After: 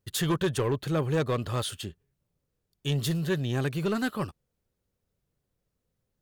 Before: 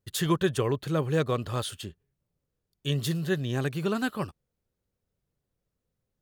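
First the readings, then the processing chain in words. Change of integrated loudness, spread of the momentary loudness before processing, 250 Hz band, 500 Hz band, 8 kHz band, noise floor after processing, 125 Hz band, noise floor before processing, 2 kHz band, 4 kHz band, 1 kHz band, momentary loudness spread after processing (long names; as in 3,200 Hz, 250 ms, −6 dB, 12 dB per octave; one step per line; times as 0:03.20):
0.0 dB, 11 LU, 0.0 dB, −0.5 dB, +1.0 dB, −82 dBFS, +0.5 dB, −84 dBFS, −0.5 dB, +0.5 dB, −1.0 dB, 9 LU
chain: soft clipping −22 dBFS, distortion −14 dB
level +2 dB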